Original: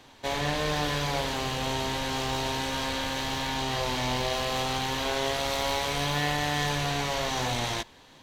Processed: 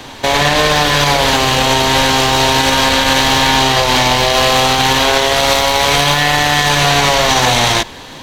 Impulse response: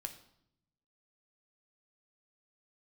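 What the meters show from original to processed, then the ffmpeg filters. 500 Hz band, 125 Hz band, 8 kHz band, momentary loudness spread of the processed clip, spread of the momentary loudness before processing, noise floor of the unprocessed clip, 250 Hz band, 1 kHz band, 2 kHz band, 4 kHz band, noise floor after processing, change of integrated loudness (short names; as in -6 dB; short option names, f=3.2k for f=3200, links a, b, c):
+16.0 dB, +14.0 dB, +18.5 dB, 1 LU, 3 LU, -54 dBFS, +14.5 dB, +17.5 dB, +18.5 dB, +18.5 dB, -32 dBFS, +17.5 dB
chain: -filter_complex "[0:a]acrossover=split=530|3900[a][b][c];[a]asoftclip=type=tanh:threshold=-35dB[d];[d][b][c]amix=inputs=3:normalize=0,alimiter=level_in=22.5dB:limit=-1dB:release=50:level=0:latency=1,volume=-1dB"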